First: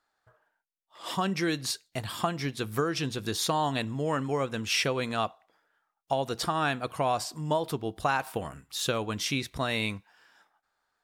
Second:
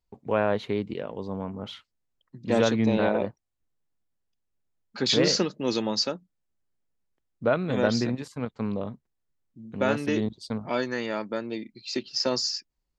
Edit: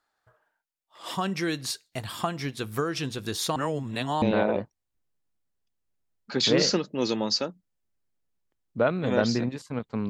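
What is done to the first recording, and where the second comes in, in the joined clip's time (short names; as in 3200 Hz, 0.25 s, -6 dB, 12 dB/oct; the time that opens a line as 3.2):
first
3.56–4.22 reverse
4.22 switch to second from 2.88 s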